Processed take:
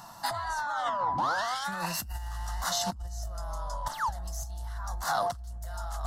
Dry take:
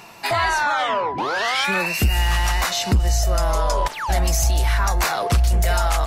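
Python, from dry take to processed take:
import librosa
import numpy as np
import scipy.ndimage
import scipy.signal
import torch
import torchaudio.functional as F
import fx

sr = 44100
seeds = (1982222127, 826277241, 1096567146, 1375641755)

y = fx.over_compress(x, sr, threshold_db=-23.0, ratio=-0.5)
y = fx.fixed_phaser(y, sr, hz=1000.0, stages=4)
y = fx.doppler_dist(y, sr, depth_ms=0.12)
y = F.gain(torch.from_numpy(y), -6.5).numpy()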